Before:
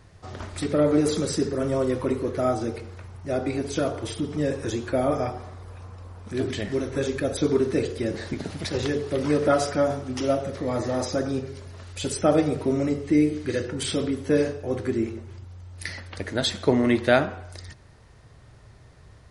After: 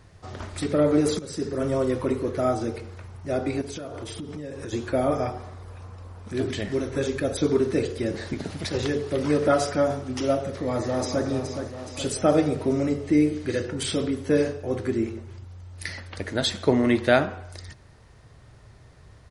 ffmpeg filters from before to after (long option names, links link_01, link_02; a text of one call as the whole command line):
ffmpeg -i in.wav -filter_complex "[0:a]asettb=1/sr,asplit=3[link_01][link_02][link_03];[link_01]atrim=end=3.614[link_04];[link_02]atrim=start=3.61:end=4.73,asetpts=PTS-STARTPTS,afade=type=in:duration=0.004:curve=qsin,afade=type=out:start_time=1.116:duration=0.004:curve=qsin,acompressor=threshold=-31dB:ratio=12:attack=3.2:release=140:knee=1:detection=peak[link_05];[link_03]atrim=start=4.726[link_06];[link_04][link_05]acrossfade=duration=0.004:curve1=hsin:curve2=qsin[link_07];[link_07][link_06]acrossfade=duration=0.004:curve1=qsin:curve2=hsin,asplit=2[link_08][link_09];[link_09]afade=type=in:start_time=10.5:duration=0.01,afade=type=out:start_time=11.26:duration=0.01,aecho=0:1:420|840|1260|1680|2100|2520|2940|3360:0.421697|0.253018|0.151811|0.0910864|0.0546519|0.0327911|0.0196747|0.0118048[link_10];[link_08][link_10]amix=inputs=2:normalize=0,asplit=2[link_11][link_12];[link_11]atrim=end=1.19,asetpts=PTS-STARTPTS,afade=type=out:start_time=1.186:duration=0.004:curve=hsin:silence=0.16788[link_13];[link_12]atrim=start=1.19,asetpts=PTS-STARTPTS,afade=type=in:duration=0.44:silence=0.16788[link_14];[link_13][link_14]concat=n=2:v=0:a=1" out.wav